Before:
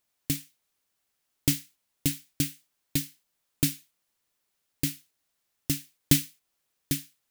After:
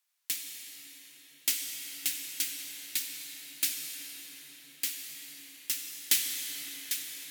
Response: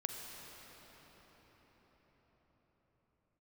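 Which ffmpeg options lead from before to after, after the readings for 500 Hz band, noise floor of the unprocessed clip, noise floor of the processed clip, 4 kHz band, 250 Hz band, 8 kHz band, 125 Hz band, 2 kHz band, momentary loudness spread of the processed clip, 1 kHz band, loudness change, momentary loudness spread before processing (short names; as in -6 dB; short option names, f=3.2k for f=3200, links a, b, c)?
-15.5 dB, -79 dBFS, -58 dBFS, +1.5 dB, -23.0 dB, +1.0 dB, under -30 dB, +1.5 dB, 17 LU, -2.5 dB, -3.0 dB, 12 LU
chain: -filter_complex "[0:a]highpass=1.2k[a];[1:a]atrim=start_sample=2205,asetrate=33516,aresample=44100[b];[a][b]afir=irnorm=-1:irlink=0"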